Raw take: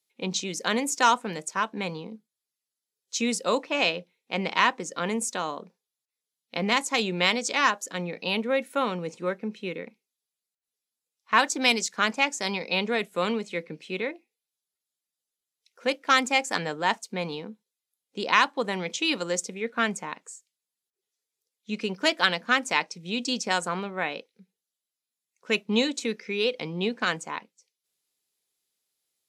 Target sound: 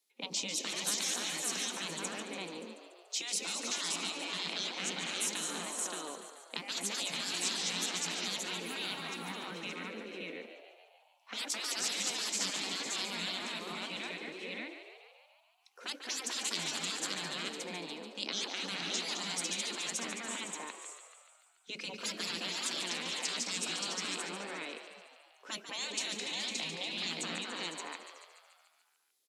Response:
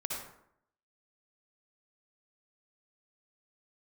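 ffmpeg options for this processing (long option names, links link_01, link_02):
-filter_complex "[0:a]highpass=frequency=240:width=0.5412,highpass=frequency=240:width=1.3066,asplit=2[link_01][link_02];[link_02]aecho=0:1:211|421|505|572:0.299|0.141|0.251|0.531[link_03];[link_01][link_03]amix=inputs=2:normalize=0,afftfilt=real='re*lt(hypot(re,im),0.0794)':imag='im*lt(hypot(re,im),0.0794)':win_size=1024:overlap=0.75,acrossover=split=370|3000[link_04][link_05][link_06];[link_05]acompressor=threshold=-44dB:ratio=3[link_07];[link_04][link_07][link_06]amix=inputs=3:normalize=0,asplit=2[link_08][link_09];[link_09]asplit=8[link_10][link_11][link_12][link_13][link_14][link_15][link_16][link_17];[link_10]adelay=144,afreqshift=67,volume=-9.5dB[link_18];[link_11]adelay=288,afreqshift=134,volume=-13.5dB[link_19];[link_12]adelay=432,afreqshift=201,volume=-17.5dB[link_20];[link_13]adelay=576,afreqshift=268,volume=-21.5dB[link_21];[link_14]adelay=720,afreqshift=335,volume=-25.6dB[link_22];[link_15]adelay=864,afreqshift=402,volume=-29.6dB[link_23];[link_16]adelay=1008,afreqshift=469,volume=-33.6dB[link_24];[link_17]adelay=1152,afreqshift=536,volume=-37.6dB[link_25];[link_18][link_19][link_20][link_21][link_22][link_23][link_24][link_25]amix=inputs=8:normalize=0[link_26];[link_08][link_26]amix=inputs=2:normalize=0"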